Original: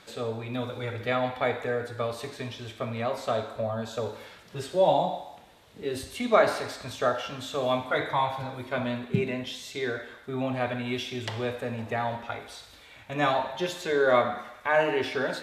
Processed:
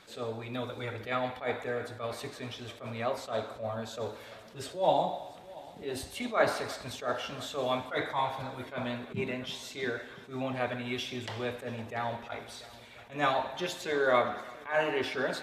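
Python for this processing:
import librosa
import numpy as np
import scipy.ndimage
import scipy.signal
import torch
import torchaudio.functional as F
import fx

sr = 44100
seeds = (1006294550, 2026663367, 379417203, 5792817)

y = fx.hpss(x, sr, part='harmonic', gain_db=-6)
y = fx.echo_heads(y, sr, ms=344, heads='first and second', feedback_pct=57, wet_db=-23.5)
y = fx.attack_slew(y, sr, db_per_s=180.0)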